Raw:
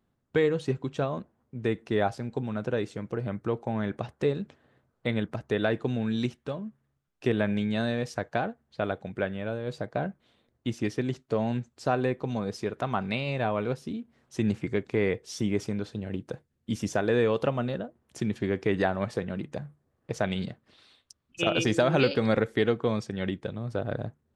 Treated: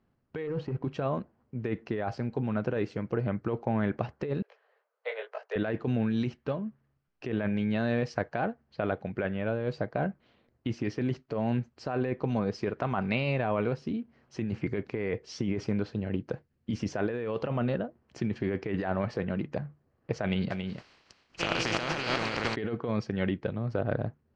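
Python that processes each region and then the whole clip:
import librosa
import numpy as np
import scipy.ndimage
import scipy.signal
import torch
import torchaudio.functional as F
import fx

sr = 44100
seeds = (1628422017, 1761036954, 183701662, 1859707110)

y = fx.chain(x, sr, fx.lowpass(hz=1300.0, slope=6),
    fx.leveller(passes=1), at=(0.47, 0.88))
y = fx.chain(y, sr, fx.steep_highpass(hz=430.0, slope=72),
    fx.detune_double(cents=32), at=(4.42, 5.56))
y = fx.spec_flatten(y, sr, power=0.33, at=(20.5, 22.54), fade=0.02)
y = fx.echo_single(y, sr, ms=277, db=-6.0, at=(20.5, 22.54), fade=0.02)
y = scipy.signal.sosfilt(scipy.signal.butter(4, 4900.0, 'lowpass', fs=sr, output='sos'), y)
y = fx.peak_eq(y, sr, hz=3600.0, db=-11.5, octaves=0.2)
y = fx.over_compress(y, sr, threshold_db=-29.0, ratio=-1.0)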